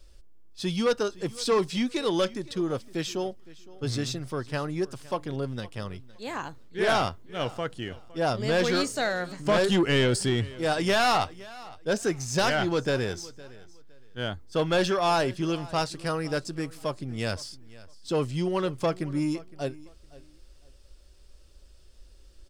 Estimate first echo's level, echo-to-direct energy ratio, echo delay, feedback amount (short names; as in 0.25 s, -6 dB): -20.5 dB, -20.5 dB, 0.512 s, 23%